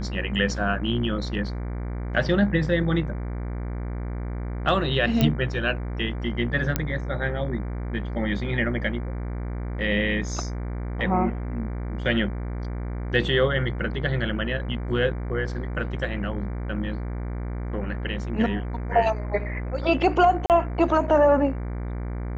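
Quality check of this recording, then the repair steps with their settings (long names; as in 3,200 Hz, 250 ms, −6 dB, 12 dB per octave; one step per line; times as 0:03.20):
mains buzz 60 Hz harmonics 39 −30 dBFS
0:05.21: click −8 dBFS
0:06.76: click −7 dBFS
0:20.46–0:20.50: drop-out 38 ms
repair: click removal
hum removal 60 Hz, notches 39
repair the gap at 0:20.46, 38 ms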